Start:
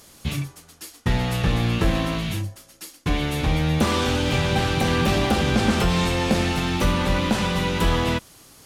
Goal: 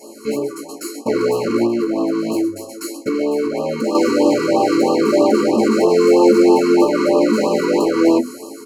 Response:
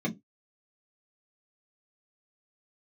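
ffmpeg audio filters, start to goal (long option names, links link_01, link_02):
-filter_complex "[0:a]equalizer=frequency=80:width_type=o:width=0.52:gain=-9,bandreject=frequency=50:width_type=h:width=6,bandreject=frequency=100:width_type=h:width=6,bandreject=frequency=150:width_type=h:width=6,bandreject=frequency=200:width_type=h:width=6,bandreject=frequency=250:width_type=h:width=6,alimiter=limit=-18.5dB:level=0:latency=1:release=101,equalizer=frequency=100:width_type=o:width=0.67:gain=4,equalizer=frequency=1000:width_type=o:width=0.67:gain=3,equalizer=frequency=10000:width_type=o:width=0.67:gain=8,asoftclip=type=tanh:threshold=-32.5dB,highpass=57,asplit=2[link_01][link_02];[link_02]adelay=18,volume=-11.5dB[link_03];[link_01][link_03]amix=inputs=2:normalize=0[link_04];[1:a]atrim=start_sample=2205,asetrate=83790,aresample=44100[link_05];[link_04][link_05]afir=irnorm=-1:irlink=0,asettb=1/sr,asplit=3[link_06][link_07][link_08];[link_06]atrim=end=1.664[link_09];[link_07]atrim=start=1.66:end=3.95,asetpts=PTS-STARTPTS,afade=type=in:duration=0.004:curve=qsin,afade=type=out:start_time=2.286:duration=0.004:curve=qsin,acompressor=threshold=-28dB:ratio=6[link_10];[link_08]atrim=start=3.946[link_11];[link_09][link_10]acrossfade=duration=0.004:curve1=hsin:curve2=qsin[link_12];[link_12][link_11]acrossfade=duration=0.004:curve1=qsin:curve2=hsin,asuperstop=centerf=3500:order=8:qfactor=3.4,dynaudnorm=framelen=180:gausssize=5:maxgain=6.5dB,afftfilt=real='re*(1-between(b*sr/1024,650*pow(1800/650,0.5+0.5*sin(2*PI*3.1*pts/sr))/1.41,650*pow(1800/650,0.5+0.5*sin(2*PI*3.1*pts/sr))*1.41))':imag='im*(1-between(b*sr/1024,650*pow(1800/650,0.5+0.5*sin(2*PI*3.1*pts/sr))/1.41,650*pow(1800/650,0.5+0.5*sin(2*PI*3.1*pts/sr))*1.41))':win_size=1024:overlap=0.75,volume=6dB"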